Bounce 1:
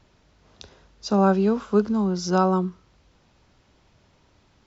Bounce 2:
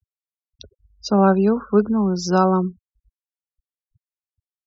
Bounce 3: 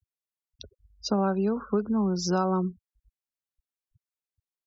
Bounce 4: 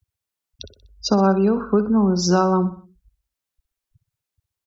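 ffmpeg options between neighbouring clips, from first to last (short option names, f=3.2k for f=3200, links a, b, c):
-af "afftfilt=real='re*gte(hypot(re,im),0.0141)':imag='im*gte(hypot(re,im),0.0141)':win_size=1024:overlap=0.75,volume=3.5dB"
-af "acompressor=threshold=-19dB:ratio=6,volume=-3dB"
-af "aecho=1:1:62|124|186|248:0.211|0.0972|0.0447|0.0206,volume=8dB"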